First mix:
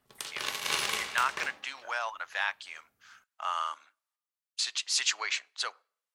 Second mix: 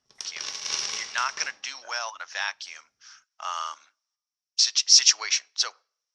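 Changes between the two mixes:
background -6.5 dB; master: add synth low-pass 5600 Hz, resonance Q 12

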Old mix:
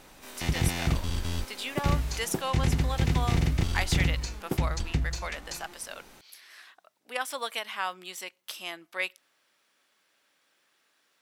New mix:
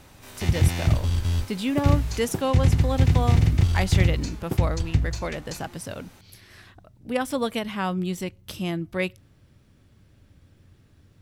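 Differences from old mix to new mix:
speech: remove HPF 920 Hz 12 dB/oct; master: add bell 98 Hz +12.5 dB 0.87 oct

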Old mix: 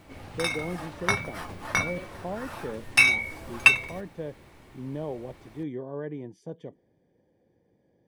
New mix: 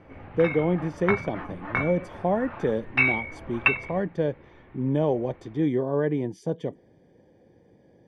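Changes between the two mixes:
speech +10.5 dB; background: add LPF 2400 Hz 24 dB/oct

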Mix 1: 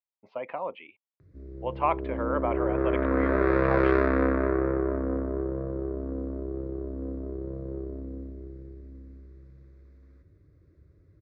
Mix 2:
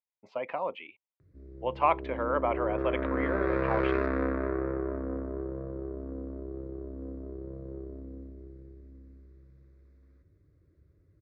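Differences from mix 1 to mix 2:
speech: remove air absorption 190 m; background -5.5 dB

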